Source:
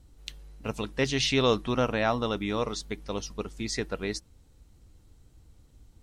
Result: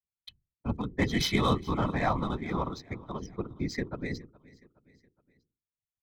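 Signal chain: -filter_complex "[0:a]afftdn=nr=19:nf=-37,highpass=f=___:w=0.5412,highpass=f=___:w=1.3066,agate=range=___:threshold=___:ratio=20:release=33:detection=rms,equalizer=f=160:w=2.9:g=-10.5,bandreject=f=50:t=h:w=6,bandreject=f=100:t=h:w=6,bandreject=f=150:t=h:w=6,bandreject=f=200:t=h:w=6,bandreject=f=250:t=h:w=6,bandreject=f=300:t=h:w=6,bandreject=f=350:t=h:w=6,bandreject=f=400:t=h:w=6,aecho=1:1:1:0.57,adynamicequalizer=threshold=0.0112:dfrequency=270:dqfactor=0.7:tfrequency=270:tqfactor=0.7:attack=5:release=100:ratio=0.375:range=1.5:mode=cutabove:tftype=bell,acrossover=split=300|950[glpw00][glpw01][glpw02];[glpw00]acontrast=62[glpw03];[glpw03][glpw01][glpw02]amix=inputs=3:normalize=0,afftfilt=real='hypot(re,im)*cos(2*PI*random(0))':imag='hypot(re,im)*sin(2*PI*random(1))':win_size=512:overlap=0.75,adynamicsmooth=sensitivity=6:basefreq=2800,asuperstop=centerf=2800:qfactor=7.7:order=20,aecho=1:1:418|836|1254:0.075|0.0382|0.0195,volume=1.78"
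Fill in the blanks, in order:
89, 89, 0.0112, 0.002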